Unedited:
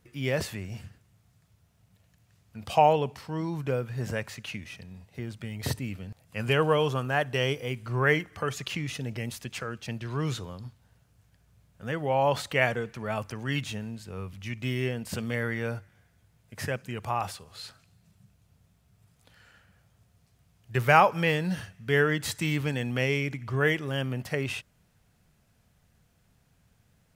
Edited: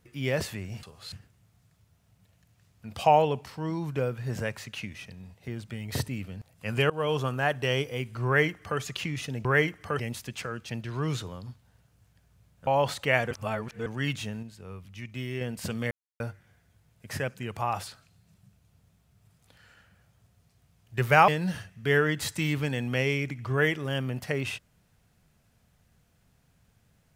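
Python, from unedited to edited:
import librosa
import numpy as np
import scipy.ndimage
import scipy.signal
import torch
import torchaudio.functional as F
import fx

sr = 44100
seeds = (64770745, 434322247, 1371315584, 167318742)

y = fx.edit(x, sr, fx.fade_in_from(start_s=6.61, length_s=0.37, curve='qsin', floor_db=-23.0),
    fx.duplicate(start_s=7.97, length_s=0.54, to_s=9.16),
    fx.cut(start_s=11.84, length_s=0.31),
    fx.reverse_span(start_s=12.79, length_s=0.55),
    fx.clip_gain(start_s=13.91, length_s=0.98, db=-5.0),
    fx.silence(start_s=15.39, length_s=0.29),
    fx.move(start_s=17.36, length_s=0.29, to_s=0.83),
    fx.cut(start_s=21.05, length_s=0.26), tone=tone)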